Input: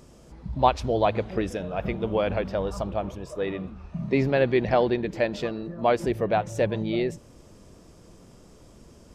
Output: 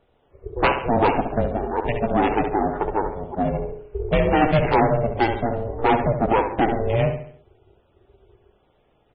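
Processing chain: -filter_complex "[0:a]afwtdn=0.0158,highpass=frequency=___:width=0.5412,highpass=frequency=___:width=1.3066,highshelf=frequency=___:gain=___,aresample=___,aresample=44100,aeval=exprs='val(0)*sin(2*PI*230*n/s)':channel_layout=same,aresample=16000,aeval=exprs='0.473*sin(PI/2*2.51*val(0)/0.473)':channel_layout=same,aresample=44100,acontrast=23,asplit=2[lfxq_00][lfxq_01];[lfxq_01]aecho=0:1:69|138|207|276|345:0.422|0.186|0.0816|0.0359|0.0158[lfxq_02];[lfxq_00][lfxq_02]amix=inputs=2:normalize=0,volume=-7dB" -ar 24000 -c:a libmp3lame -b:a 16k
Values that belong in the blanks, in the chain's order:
150, 150, 2.2k, 4.5, 8000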